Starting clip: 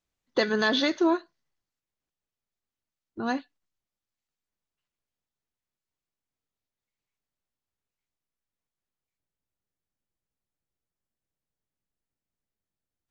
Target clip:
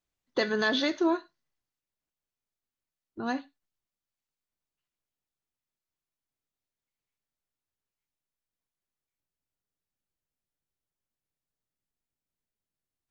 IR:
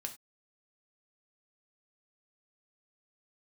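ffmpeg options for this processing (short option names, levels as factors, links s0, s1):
-filter_complex "[0:a]asplit=2[s0][s1];[1:a]atrim=start_sample=2205,asetrate=41895,aresample=44100[s2];[s1][s2]afir=irnorm=-1:irlink=0,volume=0.596[s3];[s0][s3]amix=inputs=2:normalize=0,volume=0.501"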